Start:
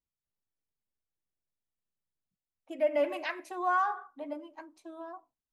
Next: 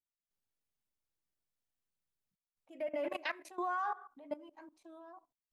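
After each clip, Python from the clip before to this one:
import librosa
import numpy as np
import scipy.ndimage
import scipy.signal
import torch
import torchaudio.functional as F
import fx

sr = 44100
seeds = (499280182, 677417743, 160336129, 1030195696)

y = fx.level_steps(x, sr, step_db=18)
y = y * librosa.db_to_amplitude(1.0)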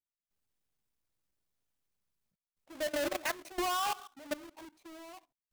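y = fx.halfwave_hold(x, sr)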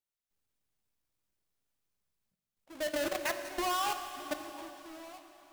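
y = fx.rev_plate(x, sr, seeds[0], rt60_s=3.8, hf_ratio=1.0, predelay_ms=0, drr_db=7.0)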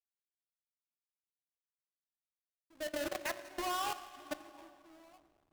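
y = fx.cheby_harmonics(x, sr, harmonics=(7,), levels_db=(-22,), full_scale_db=-22.0)
y = fx.backlash(y, sr, play_db=-55.0)
y = y * librosa.db_to_amplitude(-4.0)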